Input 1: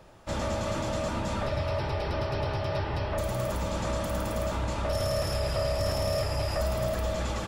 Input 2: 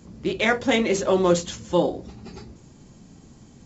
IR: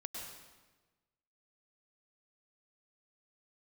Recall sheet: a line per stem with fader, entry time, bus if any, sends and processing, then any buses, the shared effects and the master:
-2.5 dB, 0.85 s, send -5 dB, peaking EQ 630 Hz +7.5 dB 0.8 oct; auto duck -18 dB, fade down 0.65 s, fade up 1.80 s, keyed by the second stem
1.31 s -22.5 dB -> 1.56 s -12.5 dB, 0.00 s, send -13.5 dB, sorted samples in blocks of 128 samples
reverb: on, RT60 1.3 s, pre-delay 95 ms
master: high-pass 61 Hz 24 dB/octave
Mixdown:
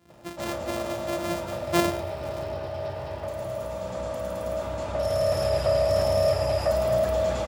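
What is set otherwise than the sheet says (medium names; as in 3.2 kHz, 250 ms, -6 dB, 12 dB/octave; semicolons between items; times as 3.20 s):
stem 1: entry 0.85 s -> 0.10 s; stem 2 -22.5 dB -> -14.0 dB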